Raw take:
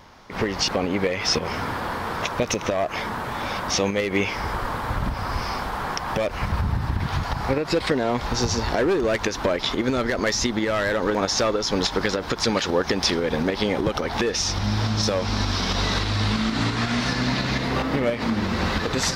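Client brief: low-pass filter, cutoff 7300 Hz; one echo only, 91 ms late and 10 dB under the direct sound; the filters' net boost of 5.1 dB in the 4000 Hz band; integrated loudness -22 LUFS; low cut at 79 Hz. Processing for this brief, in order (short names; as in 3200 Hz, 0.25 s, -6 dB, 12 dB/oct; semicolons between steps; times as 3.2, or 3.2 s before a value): HPF 79 Hz; LPF 7300 Hz; bell 4000 Hz +7 dB; echo 91 ms -10 dB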